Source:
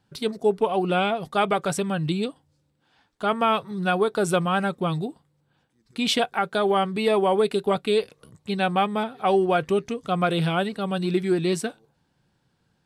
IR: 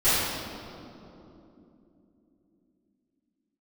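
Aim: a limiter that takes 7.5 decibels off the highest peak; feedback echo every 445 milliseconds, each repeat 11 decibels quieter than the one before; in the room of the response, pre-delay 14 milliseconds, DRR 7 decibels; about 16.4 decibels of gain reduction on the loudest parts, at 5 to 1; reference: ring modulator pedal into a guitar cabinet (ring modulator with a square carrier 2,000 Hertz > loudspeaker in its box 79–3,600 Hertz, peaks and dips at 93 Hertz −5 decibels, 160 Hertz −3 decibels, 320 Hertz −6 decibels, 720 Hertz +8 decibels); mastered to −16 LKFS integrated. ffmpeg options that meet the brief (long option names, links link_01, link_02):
-filter_complex "[0:a]acompressor=threshold=-36dB:ratio=5,alimiter=level_in=6.5dB:limit=-24dB:level=0:latency=1,volume=-6.5dB,aecho=1:1:445|890|1335:0.282|0.0789|0.0221,asplit=2[link_01][link_02];[1:a]atrim=start_sample=2205,adelay=14[link_03];[link_02][link_03]afir=irnorm=-1:irlink=0,volume=-24.5dB[link_04];[link_01][link_04]amix=inputs=2:normalize=0,aeval=exprs='val(0)*sgn(sin(2*PI*2000*n/s))':channel_layout=same,highpass=79,equalizer=frequency=93:width_type=q:width=4:gain=-5,equalizer=frequency=160:width_type=q:width=4:gain=-3,equalizer=frequency=320:width_type=q:width=4:gain=-6,equalizer=frequency=720:width_type=q:width=4:gain=8,lowpass=frequency=3600:width=0.5412,lowpass=frequency=3600:width=1.3066,volume=21.5dB"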